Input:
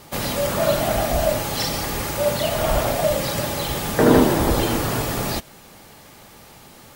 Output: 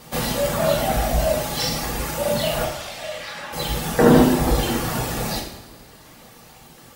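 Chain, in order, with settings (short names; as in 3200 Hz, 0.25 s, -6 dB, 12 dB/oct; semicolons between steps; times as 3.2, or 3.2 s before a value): reverb removal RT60 1.5 s; 2.64–3.52 band-pass 4800 Hz -> 1300 Hz, Q 1.1; two-slope reverb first 0.64 s, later 3.3 s, from -18 dB, DRR -1 dB; gain -1 dB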